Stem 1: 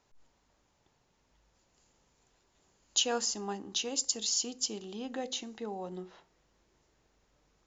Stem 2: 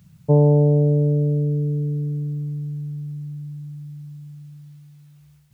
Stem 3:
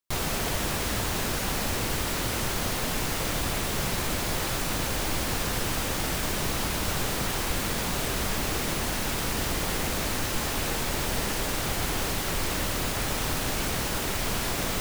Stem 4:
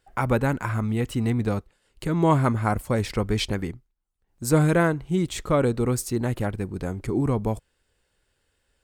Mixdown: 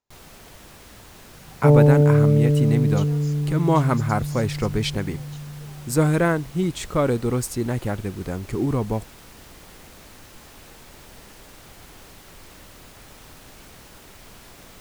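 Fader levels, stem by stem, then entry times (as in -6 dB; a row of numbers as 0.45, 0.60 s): -14.5, +1.0, -17.0, +0.5 dB; 0.00, 1.35, 0.00, 1.45 s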